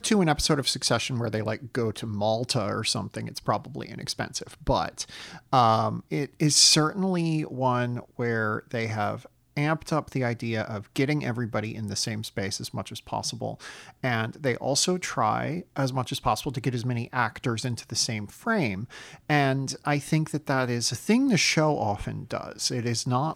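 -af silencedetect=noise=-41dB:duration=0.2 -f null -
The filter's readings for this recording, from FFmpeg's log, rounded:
silence_start: 9.26
silence_end: 9.57 | silence_duration: 0.31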